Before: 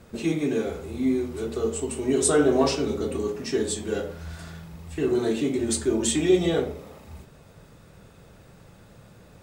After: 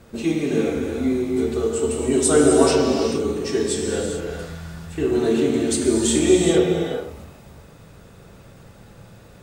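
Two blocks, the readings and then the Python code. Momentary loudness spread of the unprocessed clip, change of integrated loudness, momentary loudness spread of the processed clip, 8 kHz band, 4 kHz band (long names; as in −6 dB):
17 LU, +5.0 dB, 13 LU, +4.5 dB, +5.0 dB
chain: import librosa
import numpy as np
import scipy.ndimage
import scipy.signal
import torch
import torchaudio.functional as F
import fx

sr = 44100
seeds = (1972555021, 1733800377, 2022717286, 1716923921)

y = fx.rev_gated(x, sr, seeds[0], gate_ms=460, shape='flat', drr_db=0.5)
y = F.gain(torch.from_numpy(y), 2.0).numpy()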